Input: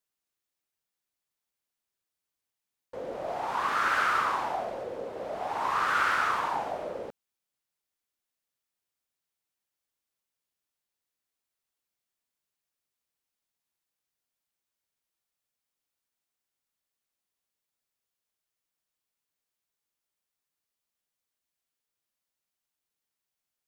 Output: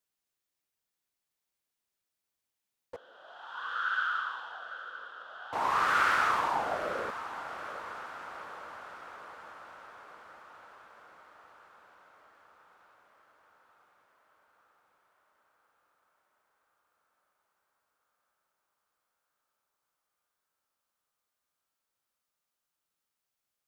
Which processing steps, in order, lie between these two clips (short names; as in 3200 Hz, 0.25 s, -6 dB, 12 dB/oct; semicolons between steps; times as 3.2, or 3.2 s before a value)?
2.96–5.53 double band-pass 2200 Hz, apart 1.1 oct; diffused feedback echo 0.828 s, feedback 66%, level -12 dB